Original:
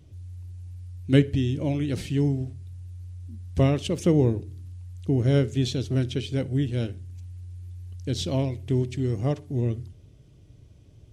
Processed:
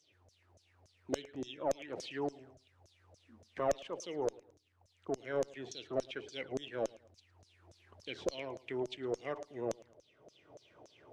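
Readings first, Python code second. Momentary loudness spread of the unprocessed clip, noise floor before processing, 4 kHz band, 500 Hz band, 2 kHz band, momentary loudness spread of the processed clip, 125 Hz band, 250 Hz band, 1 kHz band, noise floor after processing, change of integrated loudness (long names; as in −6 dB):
19 LU, −53 dBFS, −11.0 dB, −8.0 dB, −7.0 dB, 10 LU, −30.5 dB, −19.0 dB, −2.5 dB, −72 dBFS, −14.0 dB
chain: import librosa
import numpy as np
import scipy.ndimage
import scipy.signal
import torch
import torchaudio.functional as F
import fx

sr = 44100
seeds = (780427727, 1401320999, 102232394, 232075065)

p1 = fx.peak_eq(x, sr, hz=460.0, db=11.5, octaves=2.0)
p2 = fx.rider(p1, sr, range_db=10, speed_s=2.0)
p3 = fx.filter_lfo_bandpass(p2, sr, shape='saw_down', hz=3.5, low_hz=560.0, high_hz=6500.0, q=7.8)
p4 = fx.tube_stage(p3, sr, drive_db=23.0, bias=0.25)
p5 = p4 + fx.echo_feedback(p4, sr, ms=109, feedback_pct=33, wet_db=-23.0, dry=0)
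p6 = fx.band_squash(p5, sr, depth_pct=40)
y = p6 * librosa.db_to_amplitude(4.0)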